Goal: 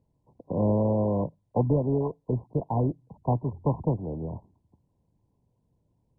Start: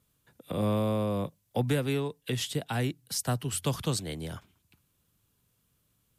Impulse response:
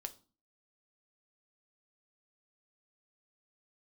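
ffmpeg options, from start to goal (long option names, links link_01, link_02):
-filter_complex "[0:a]asettb=1/sr,asplit=3[link_01][link_02][link_03];[link_01]atrim=end=2.214[link_04];[link_02]atrim=start=2.21:end=4.09,asetpts=PTS-STARTPTS,afade=type=in:duration=0.004:curve=qsin,afade=type=out:start_time=1.876:duration=0.004:curve=qsin,highshelf=frequency=1600:width_type=q:width=3:gain=-6.5[link_05];[link_03]atrim=start=4.086[link_06];[link_04][link_05]acrossfade=duration=0.004:curve1=hsin:curve2=qsin[link_07];[link_07][link_06]acrossfade=duration=0.004:curve1=qsin:curve2=hsin,volume=4dB" -ar 22050 -c:a mp2 -b:a 8k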